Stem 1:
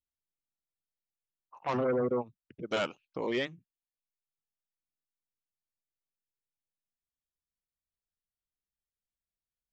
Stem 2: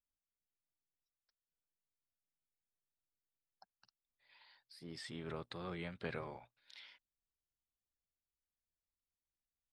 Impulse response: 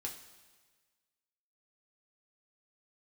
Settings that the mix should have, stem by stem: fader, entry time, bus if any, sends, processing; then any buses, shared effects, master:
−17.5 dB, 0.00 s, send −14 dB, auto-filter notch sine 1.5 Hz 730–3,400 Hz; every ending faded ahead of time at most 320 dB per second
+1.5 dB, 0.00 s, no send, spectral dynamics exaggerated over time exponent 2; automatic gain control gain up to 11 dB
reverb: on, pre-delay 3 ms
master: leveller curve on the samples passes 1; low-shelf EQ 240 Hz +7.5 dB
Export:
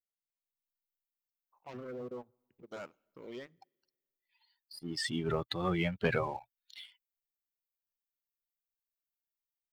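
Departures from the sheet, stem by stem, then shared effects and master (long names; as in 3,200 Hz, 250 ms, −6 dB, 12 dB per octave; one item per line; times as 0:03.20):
stem 1: missing every ending faded ahead of time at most 320 dB per second
master: missing low-shelf EQ 240 Hz +7.5 dB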